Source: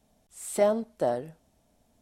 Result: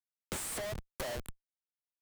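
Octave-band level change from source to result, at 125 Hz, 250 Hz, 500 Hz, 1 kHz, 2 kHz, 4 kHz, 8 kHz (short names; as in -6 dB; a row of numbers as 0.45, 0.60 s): -2.5, -14.5, -15.5, -12.5, -0.5, +3.5, -1.0 dB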